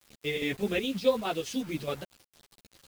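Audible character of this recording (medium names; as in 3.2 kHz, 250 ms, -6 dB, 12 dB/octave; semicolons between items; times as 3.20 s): chopped level 4.8 Hz, depth 60%, duty 75%; a quantiser's noise floor 8-bit, dither none; a shimmering, thickened sound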